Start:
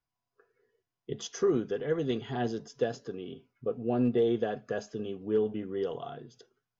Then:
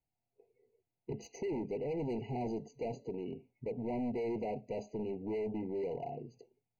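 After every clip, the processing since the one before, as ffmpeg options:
-af "volume=53.1,asoftclip=hard,volume=0.0188,lowpass=f=1600:p=1,afftfilt=real='re*eq(mod(floor(b*sr/1024/980),2),0)':imag='im*eq(mod(floor(b*sr/1024/980),2),0)':win_size=1024:overlap=0.75,volume=1.12"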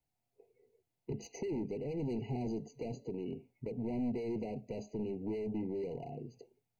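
-filter_complex "[0:a]acrossover=split=370|3000[s0][s1][s2];[s1]acompressor=threshold=0.00355:ratio=6[s3];[s0][s3][s2]amix=inputs=3:normalize=0,volume=1.33"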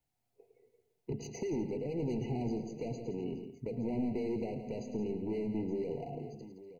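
-af "aecho=1:1:108|169|245|871:0.282|0.282|0.119|0.178,volume=1.19"

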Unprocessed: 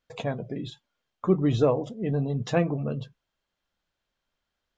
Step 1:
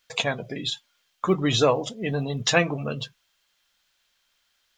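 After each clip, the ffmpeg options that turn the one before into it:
-af "tiltshelf=f=1100:g=-10,volume=2.51"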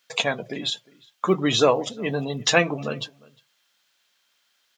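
-filter_complex "[0:a]highpass=170,asplit=2[s0][s1];[s1]adelay=355.7,volume=0.0631,highshelf=f=4000:g=-8[s2];[s0][s2]amix=inputs=2:normalize=0,volume=1.26"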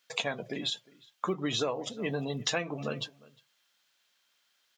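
-af "acompressor=threshold=0.0708:ratio=6,volume=0.596"

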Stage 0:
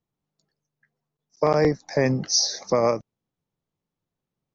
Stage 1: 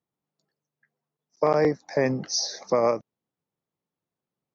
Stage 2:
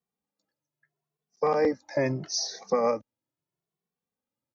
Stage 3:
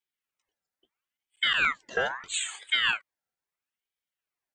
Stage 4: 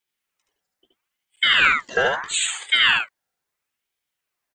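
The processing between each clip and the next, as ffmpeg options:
-af "highpass=f=240:p=1,highshelf=f=3300:g=-8"
-filter_complex "[0:a]asplit=2[s0][s1];[s1]adelay=2.2,afreqshift=0.77[s2];[s0][s2]amix=inputs=2:normalize=1"
-af "highpass=270,aeval=exprs='val(0)*sin(2*PI*1900*n/s+1900*0.45/0.76*sin(2*PI*0.76*n/s))':c=same,volume=1.26"
-af "aecho=1:1:73:0.708,volume=2.24"

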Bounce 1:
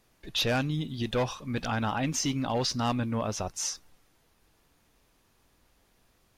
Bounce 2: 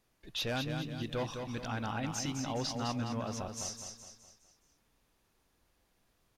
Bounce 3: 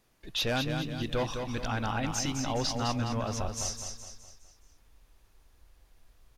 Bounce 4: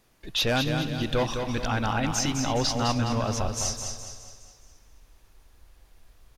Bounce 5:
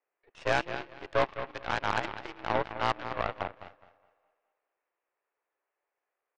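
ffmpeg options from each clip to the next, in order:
-af "aecho=1:1:208|416|624|832|1040:0.501|0.226|0.101|0.0457|0.0206,volume=0.398"
-af "asubboost=boost=6.5:cutoff=68,volume=1.88"
-af "aecho=1:1:275|550|825|1100:0.15|0.0658|0.029|0.0127,volume=1.78"
-af "highpass=f=340:t=q:w=0.5412,highpass=f=340:t=q:w=1.307,lowpass=f=2400:t=q:w=0.5176,lowpass=f=2400:t=q:w=0.7071,lowpass=f=2400:t=q:w=1.932,afreqshift=59,aeval=exprs='0.2*(cos(1*acos(clip(val(0)/0.2,-1,1)))-cos(1*PI/2))+0.0355*(cos(4*acos(clip(val(0)/0.2,-1,1)))-cos(4*PI/2))+0.0251*(cos(7*acos(clip(val(0)/0.2,-1,1)))-cos(7*PI/2))':c=same"

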